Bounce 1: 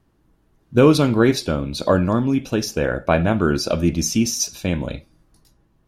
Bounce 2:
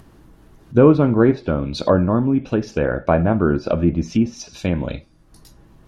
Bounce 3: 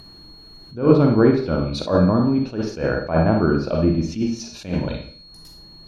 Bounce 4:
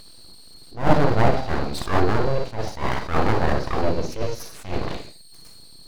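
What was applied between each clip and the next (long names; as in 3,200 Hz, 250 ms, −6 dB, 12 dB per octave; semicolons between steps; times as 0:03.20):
treble cut that deepens with the level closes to 1,300 Hz, closed at −15.5 dBFS; upward compression, threshold −37 dBFS; level +1.5 dB
four-comb reverb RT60 0.48 s, DRR 3.5 dB; steady tone 4,300 Hz −42 dBFS; level that may rise only so fast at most 170 dB per second; level −1.5 dB
full-wave rectification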